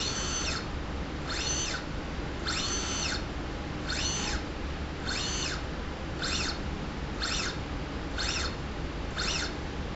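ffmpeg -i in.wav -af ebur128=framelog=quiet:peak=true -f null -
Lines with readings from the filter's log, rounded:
Integrated loudness:
  I:         -32.3 LUFS
  Threshold: -42.3 LUFS
Loudness range:
  LRA:         1.2 LU
  Threshold: -52.3 LUFS
  LRA low:   -32.8 LUFS
  LRA high:  -31.6 LUFS
True peak:
  Peak:      -17.1 dBFS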